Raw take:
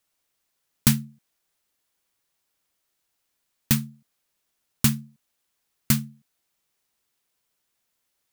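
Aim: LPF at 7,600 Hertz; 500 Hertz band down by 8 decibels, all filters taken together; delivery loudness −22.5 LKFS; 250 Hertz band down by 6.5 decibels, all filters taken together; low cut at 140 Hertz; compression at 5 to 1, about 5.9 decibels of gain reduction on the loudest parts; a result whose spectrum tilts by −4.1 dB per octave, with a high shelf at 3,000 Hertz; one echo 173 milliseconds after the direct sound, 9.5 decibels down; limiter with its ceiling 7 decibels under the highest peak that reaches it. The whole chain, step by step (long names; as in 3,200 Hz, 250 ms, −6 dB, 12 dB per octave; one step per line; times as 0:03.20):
high-pass filter 140 Hz
low-pass filter 7,600 Hz
parametric band 250 Hz −5.5 dB
parametric band 500 Hz −8.5 dB
high-shelf EQ 3,000 Hz −4.5 dB
downward compressor 5 to 1, threshold −28 dBFS
brickwall limiter −19.5 dBFS
single-tap delay 173 ms −9.5 dB
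level +18.5 dB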